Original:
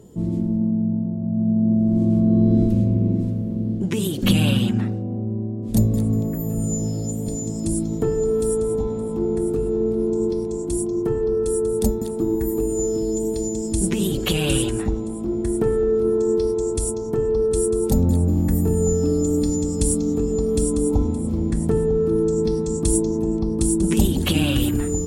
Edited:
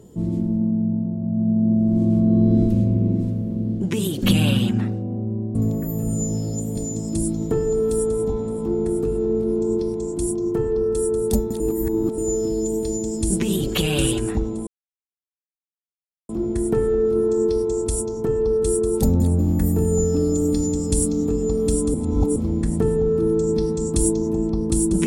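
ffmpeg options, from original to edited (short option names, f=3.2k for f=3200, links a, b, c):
-filter_complex "[0:a]asplit=7[a][b][c][d][e][f][g];[a]atrim=end=5.552[h];[b]atrim=start=6.058:end=12.112[i];[c]atrim=start=12.108:end=12.692,asetpts=PTS-STARTPTS,areverse[j];[d]atrim=start=12.688:end=15.18,asetpts=PTS-STARTPTS,afade=t=out:st=2.488:d=0.004:c=hsin,apad=pad_dur=1.62[k];[e]atrim=start=15.18:end=20.832,asetpts=PTS-STARTPTS,afade=t=in:d=0.004:c=hsin[l];[f]atrim=start=20.828:end=21.252,asetpts=PTS-STARTPTS,areverse[m];[g]atrim=start=21.248[n];[h][i]acrossfade=d=0.004:c1=hsin:c2=hsin[o];[o][j]acrossfade=d=0.004:c1=hsin:c2=hsin[p];[k][l]concat=n=2:v=0:a=1[q];[p][q]acrossfade=d=0.004:c1=hsin:c2=hsin[r];[r][m]acrossfade=d=0.004:c1=hsin:c2=hsin[s];[s][n]acrossfade=d=0.004:c1=hsin:c2=hsin"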